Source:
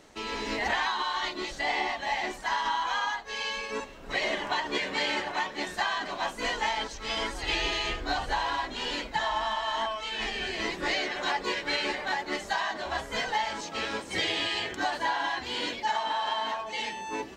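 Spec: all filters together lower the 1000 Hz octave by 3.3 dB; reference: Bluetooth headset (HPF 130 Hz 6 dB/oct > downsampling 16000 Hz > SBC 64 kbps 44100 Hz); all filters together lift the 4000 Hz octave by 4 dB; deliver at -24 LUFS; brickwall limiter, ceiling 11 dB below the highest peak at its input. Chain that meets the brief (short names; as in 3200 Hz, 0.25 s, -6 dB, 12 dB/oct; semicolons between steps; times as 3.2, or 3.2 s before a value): bell 1000 Hz -4 dB; bell 4000 Hz +5.5 dB; limiter -25 dBFS; HPF 130 Hz 6 dB/oct; downsampling 16000 Hz; gain +9 dB; SBC 64 kbps 44100 Hz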